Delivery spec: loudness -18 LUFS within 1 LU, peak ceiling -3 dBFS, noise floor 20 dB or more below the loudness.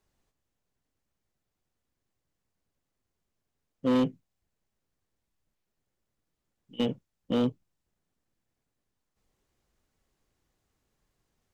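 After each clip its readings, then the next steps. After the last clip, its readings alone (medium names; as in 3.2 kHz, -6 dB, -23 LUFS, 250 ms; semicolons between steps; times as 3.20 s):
clipped samples 0.5%; clipping level -20.0 dBFS; loudness -29.5 LUFS; peak level -20.0 dBFS; loudness target -18.0 LUFS
-> clip repair -20 dBFS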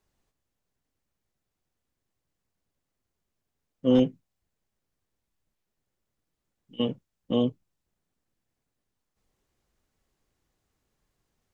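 clipped samples 0.0%; loudness -27.0 LUFS; peak level -11.0 dBFS; loudness target -18.0 LUFS
-> trim +9 dB; peak limiter -3 dBFS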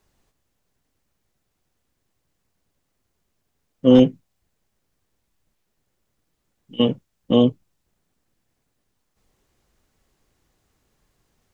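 loudness -18.0 LUFS; peak level -3.0 dBFS; noise floor -74 dBFS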